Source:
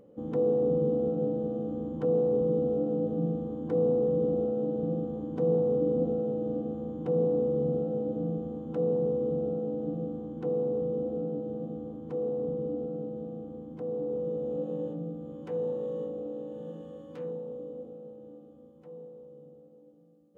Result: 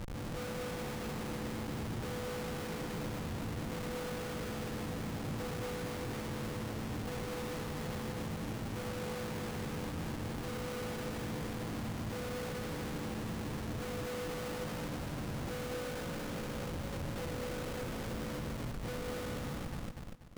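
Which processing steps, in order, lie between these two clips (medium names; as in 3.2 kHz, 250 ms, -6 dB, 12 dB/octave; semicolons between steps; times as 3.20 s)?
octave divider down 1 oct, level 0 dB; 15.90–18.17 s: bass shelf 69 Hz +11 dB; compression 6:1, threshold -42 dBFS, peak gain reduction 19.5 dB; Schmitt trigger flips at -50 dBFS; bit-crushed delay 242 ms, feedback 35%, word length 13-bit, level -3.5 dB; trim +3.5 dB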